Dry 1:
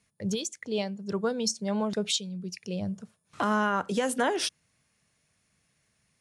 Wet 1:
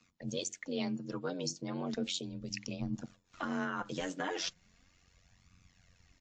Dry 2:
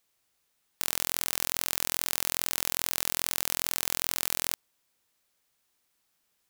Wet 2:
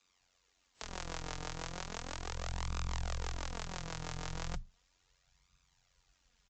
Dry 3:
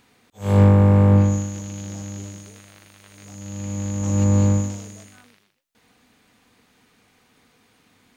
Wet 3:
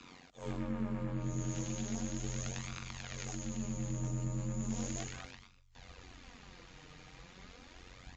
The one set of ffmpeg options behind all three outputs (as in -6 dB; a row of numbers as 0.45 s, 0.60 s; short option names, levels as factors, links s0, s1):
-filter_complex "[0:a]bandreject=f=60:t=h:w=6,bandreject=f=120:t=h:w=6,bandreject=f=180:t=h:w=6,asubboost=boost=9.5:cutoff=76,aecho=1:1:4.3:0.52,acrossover=split=280|1300[s0][s1][s2];[s0]acompressor=threshold=0.126:ratio=4[s3];[s1]acompressor=threshold=0.0224:ratio=4[s4];[s2]acompressor=threshold=0.02:ratio=4[s5];[s3][s4][s5]amix=inputs=3:normalize=0,alimiter=limit=0.168:level=0:latency=1:release=241,areverse,acompressor=threshold=0.0141:ratio=8,areverse,afreqshift=24,tremolo=f=91:d=0.919,flanger=delay=0.8:depth=5.8:regen=28:speed=0.36:shape=sinusoidal,aresample=16000,aresample=44100,volume=3.35" -ar 44100 -c:a wmav2 -b:a 64k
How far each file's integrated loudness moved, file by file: -8.5 LU, -14.0 LU, -21.0 LU